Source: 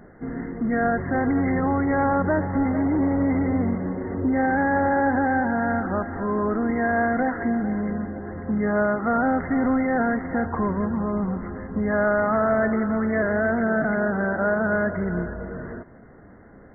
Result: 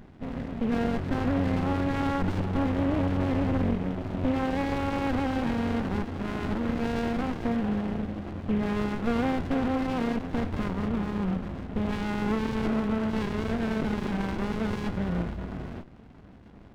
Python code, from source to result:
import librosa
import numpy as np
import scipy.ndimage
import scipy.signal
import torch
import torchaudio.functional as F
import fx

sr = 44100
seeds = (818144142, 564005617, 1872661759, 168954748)

y = fx.cvsd(x, sr, bps=16000)
y = fx.running_max(y, sr, window=65)